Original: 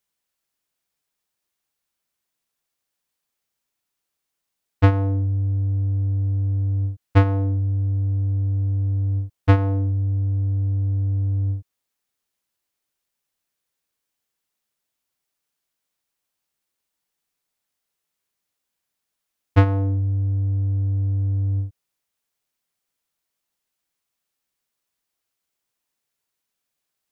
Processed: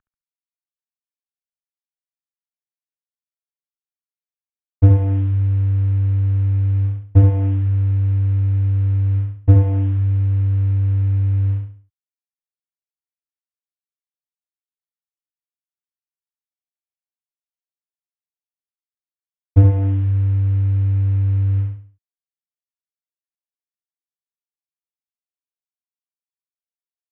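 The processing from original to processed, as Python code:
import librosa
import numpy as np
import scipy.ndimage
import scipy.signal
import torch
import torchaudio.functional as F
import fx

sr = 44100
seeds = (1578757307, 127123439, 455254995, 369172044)

p1 = fx.cvsd(x, sr, bps=16000)
p2 = fx.lowpass(p1, sr, hz=1200.0, slope=6)
p3 = fx.low_shelf(p2, sr, hz=89.0, db=9.0)
p4 = p3 + fx.echo_feedback(p3, sr, ms=69, feedback_pct=34, wet_db=-4, dry=0)
y = p4 * 10.0 ** (1.0 / 20.0)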